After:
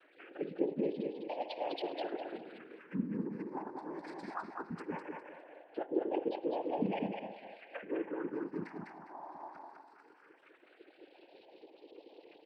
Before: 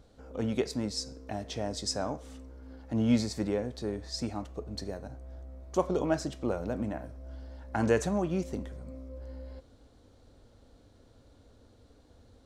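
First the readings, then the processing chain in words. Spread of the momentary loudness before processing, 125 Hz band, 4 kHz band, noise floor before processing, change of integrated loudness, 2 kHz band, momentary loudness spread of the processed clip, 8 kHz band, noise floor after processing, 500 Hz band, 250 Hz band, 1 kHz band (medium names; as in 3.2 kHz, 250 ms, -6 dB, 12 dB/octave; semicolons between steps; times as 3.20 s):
19 LU, -13.0 dB, -12.0 dB, -60 dBFS, -7.0 dB, -6.0 dB, 21 LU, under -30 dB, -64 dBFS, -4.5 dB, -6.5 dB, -2.0 dB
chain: formants replaced by sine waves; low-pass that closes with the level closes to 830 Hz, closed at -26 dBFS; comb 4.9 ms, depth 75%; reverse; compression 10:1, threshold -36 dBFS, peak gain reduction 19.5 dB; reverse; noise-vocoded speech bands 8; phase shifter stages 4, 0.19 Hz, lowest notch 470–1400 Hz; on a send: feedback delay 203 ms, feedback 23%, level -4 dB; on the sum: spring tank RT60 1 s, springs 53/58 ms, DRR 18.5 dB; tape noise reduction on one side only encoder only; trim +6 dB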